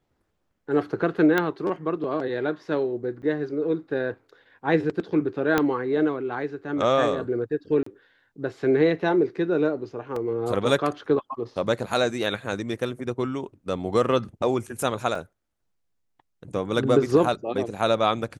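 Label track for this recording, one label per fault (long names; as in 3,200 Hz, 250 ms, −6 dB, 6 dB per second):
1.380000	1.380000	click −10 dBFS
3.220000	3.230000	drop-out 6.9 ms
5.580000	5.580000	click −7 dBFS
7.830000	7.860000	drop-out 34 ms
10.160000	10.160000	drop-out 3.6 ms
15.150000	15.150000	drop-out 3.3 ms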